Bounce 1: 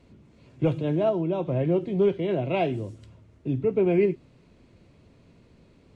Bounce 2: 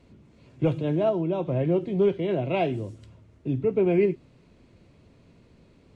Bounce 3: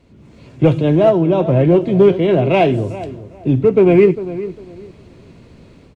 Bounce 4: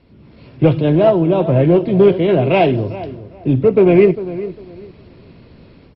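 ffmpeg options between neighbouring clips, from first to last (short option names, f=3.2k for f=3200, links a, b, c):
-af anull
-filter_complex "[0:a]dynaudnorm=f=130:g=3:m=9dB,asplit=2[a][b];[b]asoftclip=type=hard:threshold=-14dB,volume=-10dB[c];[a][c]amix=inputs=2:normalize=0,asplit=2[d][e];[e]adelay=401,lowpass=f=1.6k:p=1,volume=-14dB,asplit=2[f][g];[g]adelay=401,lowpass=f=1.6k:p=1,volume=0.25,asplit=2[h][i];[i]adelay=401,lowpass=f=1.6k:p=1,volume=0.25[j];[d][f][h][j]amix=inputs=4:normalize=0,volume=1.5dB"
-ar 22050 -c:a mp2 -b:a 32k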